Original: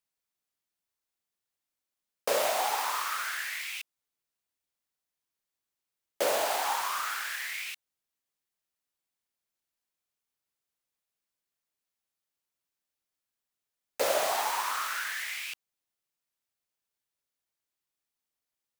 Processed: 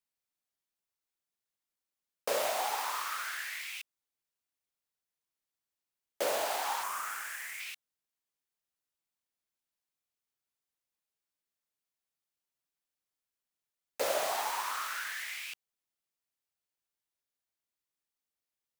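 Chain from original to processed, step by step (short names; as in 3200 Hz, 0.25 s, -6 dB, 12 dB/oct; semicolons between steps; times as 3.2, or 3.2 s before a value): 6.83–7.6 graphic EQ 125/4000/8000 Hz +8/-10/+4 dB; gain -4 dB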